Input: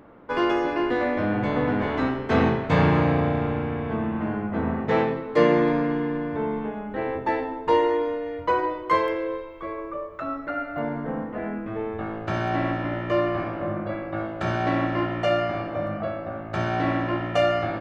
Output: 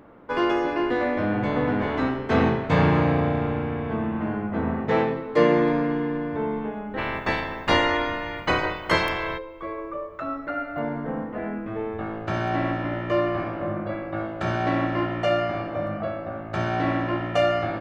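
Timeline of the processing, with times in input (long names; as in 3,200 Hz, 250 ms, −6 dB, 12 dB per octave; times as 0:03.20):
0:06.97–0:09.37: ceiling on every frequency bin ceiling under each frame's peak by 25 dB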